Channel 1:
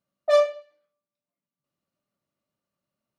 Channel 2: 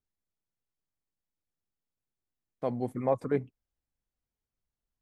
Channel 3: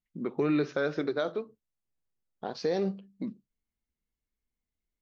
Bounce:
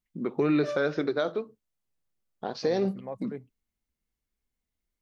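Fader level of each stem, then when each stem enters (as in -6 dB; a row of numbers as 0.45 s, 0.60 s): -16.5 dB, -11.0 dB, +2.5 dB; 0.35 s, 0.00 s, 0.00 s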